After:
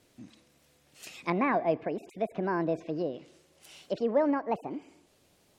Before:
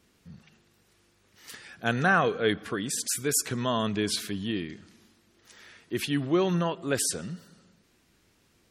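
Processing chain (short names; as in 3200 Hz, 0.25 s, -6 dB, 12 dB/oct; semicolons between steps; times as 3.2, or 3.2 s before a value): speed glide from 141% -> 171%; treble ducked by the level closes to 1100 Hz, closed at -26.5 dBFS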